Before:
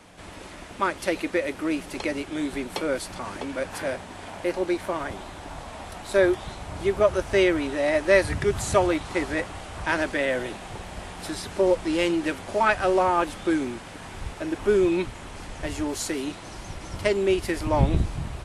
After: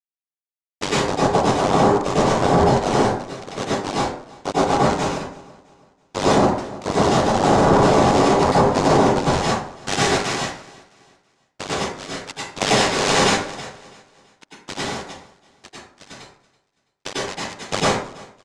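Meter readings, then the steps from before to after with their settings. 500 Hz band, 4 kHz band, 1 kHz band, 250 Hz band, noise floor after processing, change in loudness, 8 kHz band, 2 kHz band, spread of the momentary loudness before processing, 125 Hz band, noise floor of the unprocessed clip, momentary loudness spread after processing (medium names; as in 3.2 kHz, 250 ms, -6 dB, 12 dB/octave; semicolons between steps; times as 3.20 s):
+3.5 dB, +10.5 dB, +10.0 dB, +5.0 dB, -78 dBFS, +6.5 dB, +9.5 dB, +2.5 dB, 17 LU, +7.5 dB, -41 dBFS, 15 LU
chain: hum notches 50/100/150/200 Hz; dynamic bell 130 Hz, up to +7 dB, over -40 dBFS, Q 0.78; overload inside the chain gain 16.5 dB; high-pass sweep 140 Hz -> 1 kHz, 6.83–10.50 s; bit crusher 4-bit; small resonant body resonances 270/1000/1700/3300 Hz, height 9 dB, ringing for 30 ms; noise-vocoded speech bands 2; AM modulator 97 Hz, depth 95%; distance through air 72 m; on a send: feedback delay 330 ms, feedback 38%, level -22.5 dB; on the sum: plate-style reverb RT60 0.58 s, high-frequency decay 0.55×, pre-delay 85 ms, DRR -8 dB; loudness maximiser +4 dB; trim -5 dB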